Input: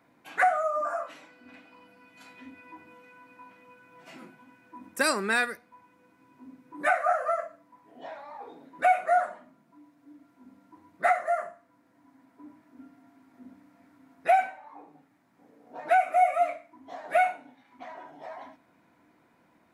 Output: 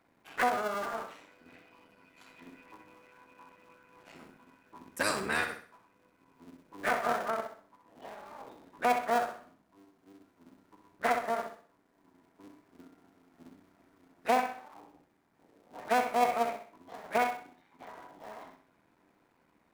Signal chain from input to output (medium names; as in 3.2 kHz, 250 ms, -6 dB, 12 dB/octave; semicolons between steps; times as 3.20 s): cycle switcher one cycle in 3, muted; flutter echo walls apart 11 m, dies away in 0.44 s; trim -4 dB